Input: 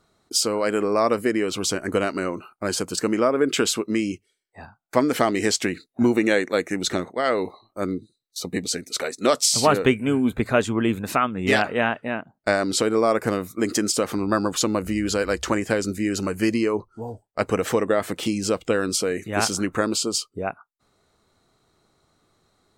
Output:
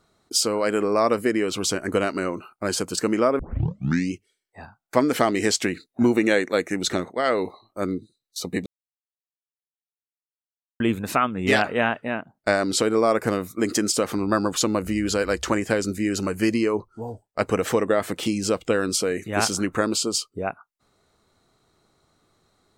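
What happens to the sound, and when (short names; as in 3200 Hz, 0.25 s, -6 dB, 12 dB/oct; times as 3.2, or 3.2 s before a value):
3.39 tape start 0.74 s
8.66–10.8 mute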